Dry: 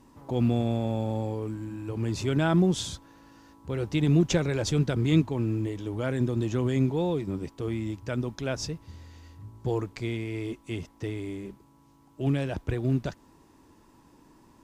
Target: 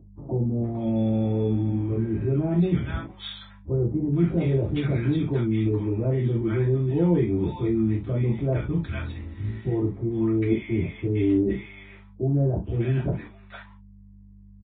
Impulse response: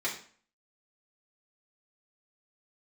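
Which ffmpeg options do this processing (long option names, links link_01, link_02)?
-filter_complex "[0:a]agate=range=-38dB:threshold=-48dB:ratio=16:detection=peak,aemphasis=mode=reproduction:type=riaa,alimiter=limit=-14.5dB:level=0:latency=1:release=73,areverse,acompressor=threshold=-30dB:ratio=6,areverse,aeval=exprs='val(0)+0.00398*(sin(2*PI*50*n/s)+sin(2*PI*2*50*n/s)/2+sin(2*PI*3*50*n/s)/3+sin(2*PI*4*50*n/s)/4+sin(2*PI*5*50*n/s)/5)':channel_layout=same,acrossover=split=930[link_01][link_02];[link_02]adelay=460[link_03];[link_01][link_03]amix=inputs=2:normalize=0[link_04];[1:a]atrim=start_sample=2205,atrim=end_sample=3528[link_05];[link_04][link_05]afir=irnorm=-1:irlink=0,aresample=8000,aresample=44100,volume=7dB" -ar 16000 -c:a libvorbis -b:a 32k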